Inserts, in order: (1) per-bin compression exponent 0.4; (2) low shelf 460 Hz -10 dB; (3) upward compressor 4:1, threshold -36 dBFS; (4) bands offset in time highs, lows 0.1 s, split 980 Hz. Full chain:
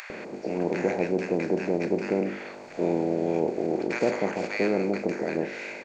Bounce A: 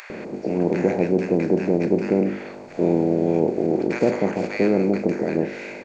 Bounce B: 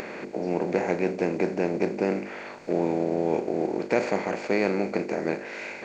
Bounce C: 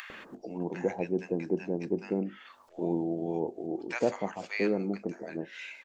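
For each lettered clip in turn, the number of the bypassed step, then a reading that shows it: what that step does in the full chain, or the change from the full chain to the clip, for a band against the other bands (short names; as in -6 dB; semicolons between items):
2, 2 kHz band -5.5 dB; 4, echo-to-direct -5.0 dB to none; 1, 125 Hz band +2.0 dB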